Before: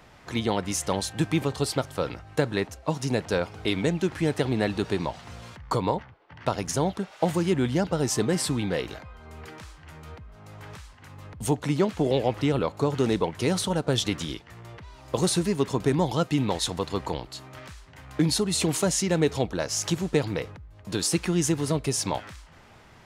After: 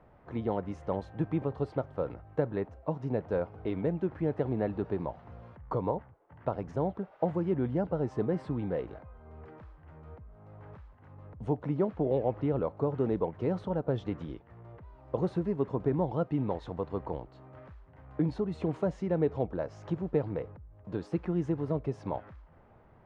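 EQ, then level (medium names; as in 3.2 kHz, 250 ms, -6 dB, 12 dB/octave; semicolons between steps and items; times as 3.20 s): low-pass 1.2 kHz 12 dB/octave; bass shelf 140 Hz +3.5 dB; peaking EQ 540 Hz +4 dB 0.96 oct; -7.5 dB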